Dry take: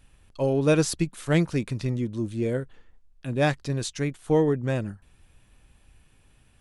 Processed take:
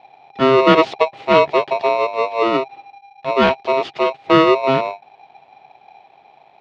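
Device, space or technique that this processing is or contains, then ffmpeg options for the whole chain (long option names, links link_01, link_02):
ring modulator pedal into a guitar cabinet: -af "aeval=exprs='val(0)*sgn(sin(2*PI*800*n/s))':channel_layout=same,highpass=91,equalizer=frequency=140:width_type=q:width=4:gain=10,equalizer=frequency=280:width_type=q:width=4:gain=3,equalizer=frequency=400:width_type=q:width=4:gain=10,equalizer=frequency=680:width_type=q:width=4:gain=6,equalizer=frequency=1600:width_type=q:width=4:gain=-4,lowpass=frequency=3500:width=0.5412,lowpass=frequency=3500:width=1.3066,volume=6.5dB"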